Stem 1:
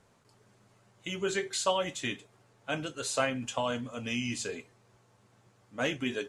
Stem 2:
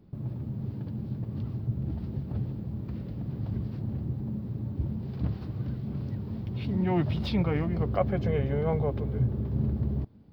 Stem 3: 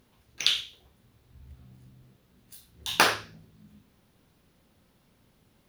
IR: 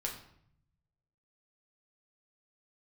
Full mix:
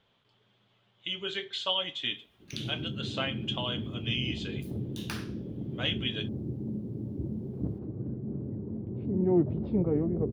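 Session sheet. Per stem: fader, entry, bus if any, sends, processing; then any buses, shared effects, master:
-8.0 dB, 0.00 s, send -16.5 dB, resonant low-pass 3.3 kHz, resonance Q 7.8
+2.0 dB, 2.40 s, no send, band-pass filter 370 Hz, Q 1.9; tilt EQ -2.5 dB/octave
-9.5 dB, 2.10 s, no send, compression 1.5:1, threshold -39 dBFS, peak gain reduction 8.5 dB; peaking EQ 720 Hz -8.5 dB 1.2 oct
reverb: on, RT60 0.65 s, pre-delay 6 ms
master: none

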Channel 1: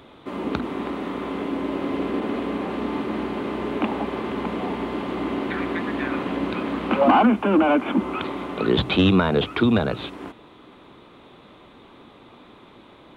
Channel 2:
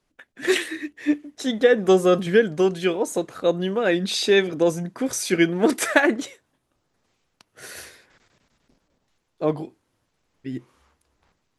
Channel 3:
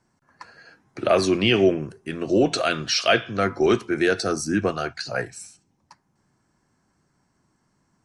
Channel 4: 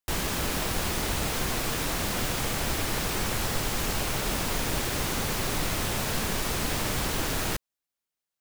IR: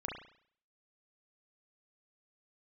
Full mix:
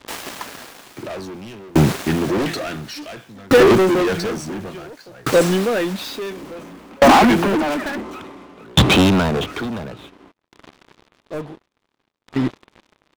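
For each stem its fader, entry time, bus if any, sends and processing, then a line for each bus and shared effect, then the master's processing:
-1.0 dB, 0.00 s, no send, auto duck -24 dB, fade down 0.30 s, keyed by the third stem
-4.0 dB, 1.90 s, no send, dead-time distortion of 0.05 ms
-1.0 dB, 0.00 s, no send, peaking EQ 200 Hz +7.5 dB 1.6 oct
-9.5 dB, 0.00 s, no send, high-pass 530 Hz 12 dB/octave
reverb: none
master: treble shelf 6.1 kHz -7.5 dB; waveshaping leveller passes 5; sawtooth tremolo in dB decaying 0.57 Hz, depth 33 dB

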